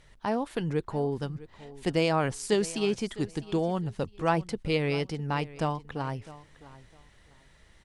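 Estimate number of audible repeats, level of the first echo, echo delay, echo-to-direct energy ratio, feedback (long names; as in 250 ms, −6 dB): 2, −18.0 dB, 656 ms, −18.0 dB, 22%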